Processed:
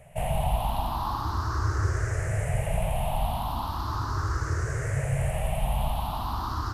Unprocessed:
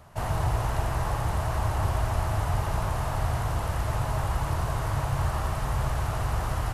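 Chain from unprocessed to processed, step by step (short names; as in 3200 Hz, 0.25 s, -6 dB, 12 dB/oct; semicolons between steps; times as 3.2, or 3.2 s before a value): moving spectral ripple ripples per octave 0.5, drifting +0.38 Hz, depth 20 dB; gain -4.5 dB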